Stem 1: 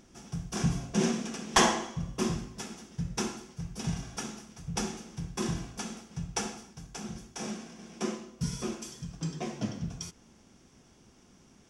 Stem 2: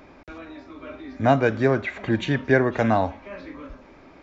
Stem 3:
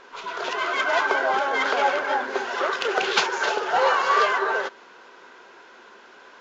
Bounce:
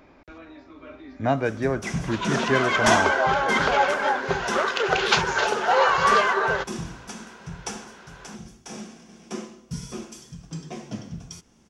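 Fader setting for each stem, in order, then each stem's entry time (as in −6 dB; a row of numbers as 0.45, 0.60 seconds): −0.5, −4.5, +1.0 decibels; 1.30, 0.00, 1.95 seconds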